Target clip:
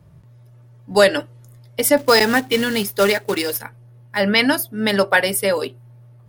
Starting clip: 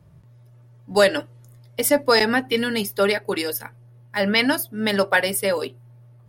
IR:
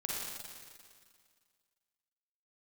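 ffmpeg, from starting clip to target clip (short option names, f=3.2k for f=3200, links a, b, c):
-filter_complex "[0:a]asettb=1/sr,asplit=3[a][b][c];[a]atrim=end=1.974[d];[b]atrim=start=1.97:end=3.62,asetpts=PTS-STARTPTS,afade=t=in:d=0.004:c=qsin,afade=t=out:st=1.646:d=0.004:c=qsin,acrusher=bits=3:mode=log:mix=0:aa=0.000001[e];[c]atrim=start=3.616[f];[d][e]acrossfade=d=0.004:c1=hsin:c2=qsin[g];[g][f]acrossfade=d=0.004:c1=qsin:c2=hsin,volume=3dB"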